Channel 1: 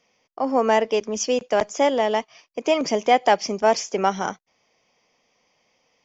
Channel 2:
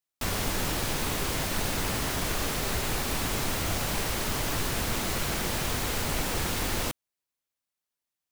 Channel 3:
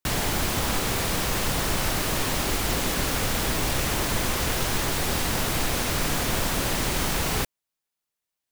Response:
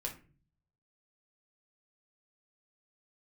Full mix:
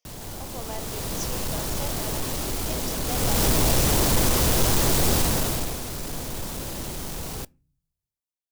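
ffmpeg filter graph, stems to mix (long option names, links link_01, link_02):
-filter_complex "[0:a]highpass=540,highshelf=frequency=2700:gain=10.5,volume=-16dB[link_01];[1:a]volume=-10.5dB[link_02];[2:a]asoftclip=type=tanh:threshold=-24.5dB,dynaudnorm=framelen=170:gausssize=11:maxgain=10dB,volume=-0.5dB,afade=type=in:start_time=3.04:duration=0.4:silence=0.398107,afade=type=out:start_time=5.13:duration=0.66:silence=0.237137,asplit=2[link_03][link_04];[link_04]volume=-20dB[link_05];[3:a]atrim=start_sample=2205[link_06];[link_05][link_06]afir=irnorm=-1:irlink=0[link_07];[link_01][link_02][link_03][link_07]amix=inputs=4:normalize=0,equalizer=frequency=1900:width=0.67:gain=-8.5"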